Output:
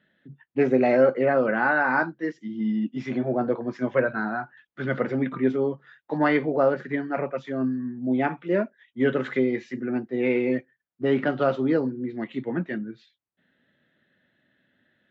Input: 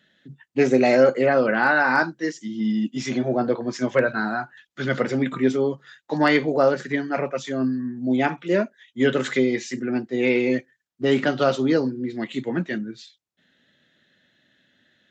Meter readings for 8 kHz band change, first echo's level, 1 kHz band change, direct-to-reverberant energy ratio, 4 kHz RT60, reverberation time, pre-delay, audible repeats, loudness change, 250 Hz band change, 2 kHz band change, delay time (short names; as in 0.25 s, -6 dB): n/a, none, -2.5 dB, none, none, none, none, none, -3.0 dB, -2.5 dB, -4.0 dB, none